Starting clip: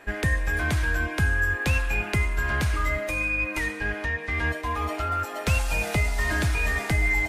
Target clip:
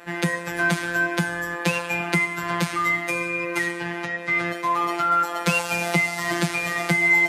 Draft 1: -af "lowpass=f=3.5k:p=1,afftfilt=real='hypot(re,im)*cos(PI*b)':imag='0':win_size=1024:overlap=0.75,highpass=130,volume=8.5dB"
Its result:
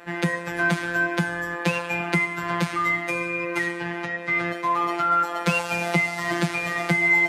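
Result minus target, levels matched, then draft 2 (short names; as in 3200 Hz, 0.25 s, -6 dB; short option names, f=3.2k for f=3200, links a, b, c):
8000 Hz band -5.0 dB
-af "lowpass=f=11k:p=1,afftfilt=real='hypot(re,im)*cos(PI*b)':imag='0':win_size=1024:overlap=0.75,highpass=130,volume=8.5dB"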